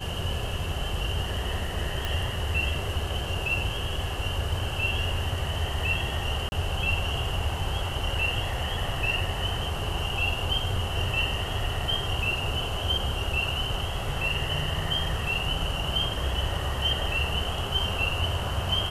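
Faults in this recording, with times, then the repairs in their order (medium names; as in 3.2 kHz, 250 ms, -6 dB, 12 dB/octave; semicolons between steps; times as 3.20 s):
2.05 s: pop
6.49–6.52 s: dropout 31 ms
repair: de-click; interpolate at 6.49 s, 31 ms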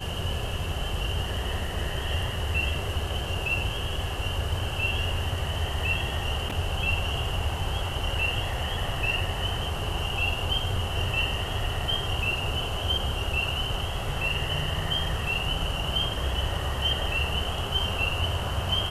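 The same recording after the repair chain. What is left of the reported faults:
nothing left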